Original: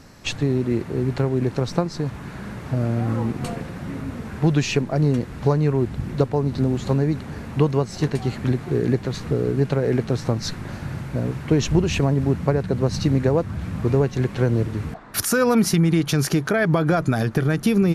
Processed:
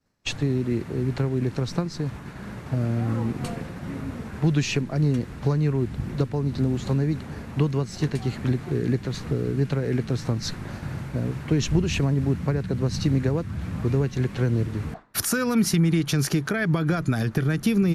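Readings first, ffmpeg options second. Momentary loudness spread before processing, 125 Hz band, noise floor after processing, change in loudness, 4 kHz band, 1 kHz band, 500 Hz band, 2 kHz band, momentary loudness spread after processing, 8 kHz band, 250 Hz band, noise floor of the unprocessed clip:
10 LU, -2.0 dB, -39 dBFS, -3.0 dB, -2.0 dB, -6.5 dB, -6.5 dB, -3.0 dB, 9 LU, -2.0 dB, -3.0 dB, -36 dBFS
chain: -filter_complex "[0:a]agate=range=0.0224:threshold=0.0282:ratio=3:detection=peak,acrossover=split=370|1200|2400[s0][s1][s2][s3];[s1]acompressor=threshold=0.02:ratio=6[s4];[s0][s4][s2][s3]amix=inputs=4:normalize=0,volume=0.794"

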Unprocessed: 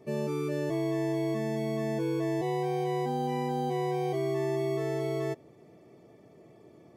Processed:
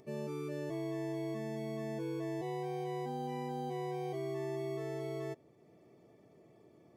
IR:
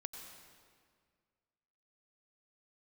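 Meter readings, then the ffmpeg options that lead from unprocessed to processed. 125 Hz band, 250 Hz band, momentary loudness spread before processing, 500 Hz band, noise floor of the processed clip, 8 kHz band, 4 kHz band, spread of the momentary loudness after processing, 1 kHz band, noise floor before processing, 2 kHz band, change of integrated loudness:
-8.5 dB, -8.5 dB, 2 LU, -8.5 dB, -63 dBFS, -8.5 dB, -8.5 dB, 2 LU, -8.5 dB, -56 dBFS, -8.5 dB, -8.5 dB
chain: -af "acompressor=mode=upward:threshold=0.00398:ratio=2.5,volume=0.376"

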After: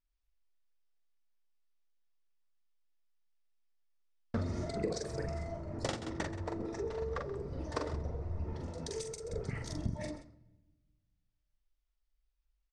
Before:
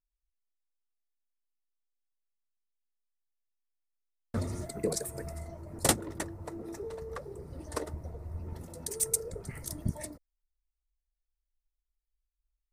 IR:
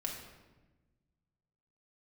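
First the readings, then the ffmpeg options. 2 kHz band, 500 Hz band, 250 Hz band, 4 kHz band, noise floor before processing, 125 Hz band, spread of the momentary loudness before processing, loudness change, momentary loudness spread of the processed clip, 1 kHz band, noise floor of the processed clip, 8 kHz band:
-2.0 dB, -0.5 dB, -1.0 dB, -5.5 dB, under -85 dBFS, 0.0 dB, 14 LU, -3.5 dB, 4 LU, -2.0 dB, -82 dBFS, -15.0 dB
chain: -filter_complex "[0:a]aecho=1:1:43|129|176:0.596|0.141|0.126,acompressor=threshold=0.0251:ratio=16,lowpass=f=5700:w=0.5412,lowpass=f=5700:w=1.3066,bandreject=f=4100:w=28,asplit=2[s0][s1];[1:a]atrim=start_sample=2205[s2];[s1][s2]afir=irnorm=-1:irlink=0,volume=0.168[s3];[s0][s3]amix=inputs=2:normalize=0,volume=1.12"

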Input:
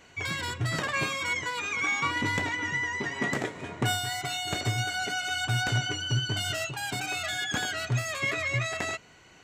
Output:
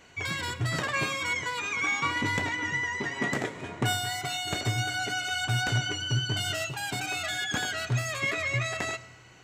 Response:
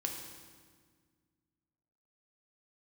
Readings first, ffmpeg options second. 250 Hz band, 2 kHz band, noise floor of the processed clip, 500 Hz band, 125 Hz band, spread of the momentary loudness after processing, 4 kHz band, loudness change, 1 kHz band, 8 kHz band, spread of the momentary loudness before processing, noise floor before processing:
0.0 dB, 0.0 dB, -50 dBFS, 0.0 dB, 0.0 dB, 5 LU, 0.0 dB, 0.0 dB, 0.0 dB, 0.0 dB, 5 LU, -55 dBFS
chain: -filter_complex "[0:a]asplit=2[s0][s1];[1:a]atrim=start_sample=2205,adelay=98[s2];[s1][s2]afir=irnorm=-1:irlink=0,volume=0.112[s3];[s0][s3]amix=inputs=2:normalize=0"

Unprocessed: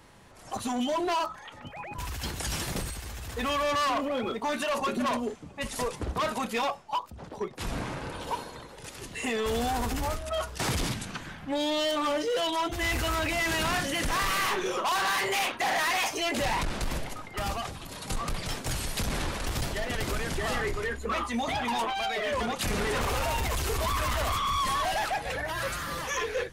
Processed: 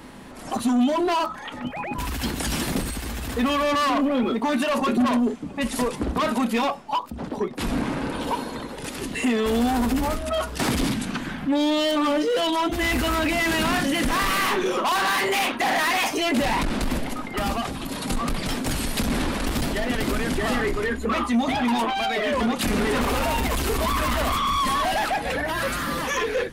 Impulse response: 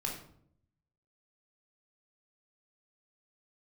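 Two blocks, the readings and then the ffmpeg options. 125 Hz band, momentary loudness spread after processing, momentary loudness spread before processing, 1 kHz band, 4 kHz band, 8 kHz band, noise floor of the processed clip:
+4.0 dB, 8 LU, 10 LU, +5.0 dB, +4.5 dB, +3.0 dB, -36 dBFS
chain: -filter_complex "[0:a]equalizer=f=100:t=o:w=0.67:g=-6,equalizer=f=250:t=o:w=0.67:g=11,equalizer=f=6300:t=o:w=0.67:g=-4,asplit=2[s0][s1];[s1]acompressor=threshold=0.0126:ratio=6,volume=1.19[s2];[s0][s2]amix=inputs=2:normalize=0,asoftclip=type=tanh:threshold=0.112,volume=1.5"

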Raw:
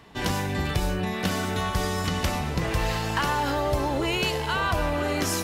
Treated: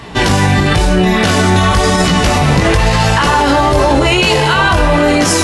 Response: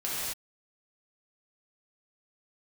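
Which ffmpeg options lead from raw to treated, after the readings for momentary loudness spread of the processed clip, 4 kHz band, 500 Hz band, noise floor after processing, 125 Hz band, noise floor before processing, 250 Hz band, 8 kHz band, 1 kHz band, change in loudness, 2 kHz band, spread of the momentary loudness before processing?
1 LU, +15.5 dB, +15.5 dB, -12 dBFS, +15.5 dB, -30 dBFS, +16.0 dB, +15.0 dB, +15.5 dB, +15.5 dB, +15.5 dB, 3 LU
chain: -filter_complex "[0:a]flanger=delay=16.5:depth=5.1:speed=0.97,asplit=2[s0][s1];[1:a]atrim=start_sample=2205[s2];[s1][s2]afir=irnorm=-1:irlink=0,volume=0.0794[s3];[s0][s3]amix=inputs=2:normalize=0,alimiter=level_in=15:limit=0.891:release=50:level=0:latency=1,volume=0.891" -ar 24000 -c:a aac -b:a 96k

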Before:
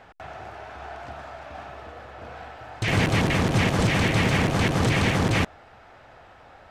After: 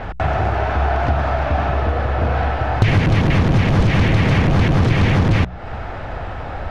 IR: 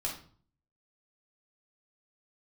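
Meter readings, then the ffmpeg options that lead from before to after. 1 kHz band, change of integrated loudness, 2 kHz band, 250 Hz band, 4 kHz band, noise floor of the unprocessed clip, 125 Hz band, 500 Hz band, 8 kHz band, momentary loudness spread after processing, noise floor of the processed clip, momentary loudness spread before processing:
+8.5 dB, +5.0 dB, +3.5 dB, +6.0 dB, +1.0 dB, -50 dBFS, +10.0 dB, +7.0 dB, no reading, 14 LU, -29 dBFS, 19 LU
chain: -af "apsyclip=11.2,aemphasis=mode=reproduction:type=bsi,bandreject=f=60:t=h:w=6,bandreject=f=120:t=h:w=6,bandreject=f=180:t=h:w=6,acompressor=threshold=0.316:ratio=6,adynamicequalizer=threshold=0.00141:dfrequency=8000:dqfactor=4:tfrequency=8000:tqfactor=4:attack=5:release=100:ratio=0.375:range=3.5:mode=cutabove:tftype=bell,volume=0.75"

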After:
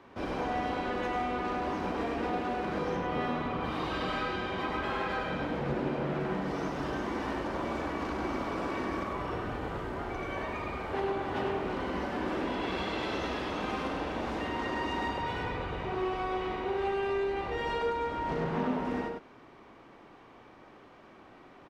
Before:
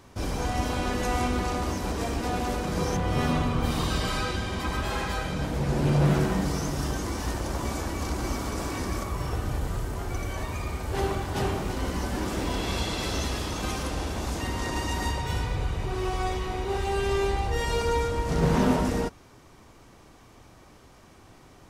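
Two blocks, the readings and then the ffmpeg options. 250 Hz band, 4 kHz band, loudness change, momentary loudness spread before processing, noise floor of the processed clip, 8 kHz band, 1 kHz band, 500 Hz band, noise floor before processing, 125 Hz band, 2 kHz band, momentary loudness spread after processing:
-4.5 dB, -7.5 dB, -4.5 dB, 7 LU, -54 dBFS, -19.5 dB, -1.5 dB, -2.5 dB, -53 dBFS, -12.5 dB, -2.0 dB, 4 LU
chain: -filter_complex "[0:a]acrossover=split=190 3400:gain=0.178 1 0.0631[s0][s1][s2];[s0][s1][s2]amix=inputs=3:normalize=0,acompressor=threshold=0.0316:ratio=6,aecho=1:1:43.73|99.13:0.282|0.562"

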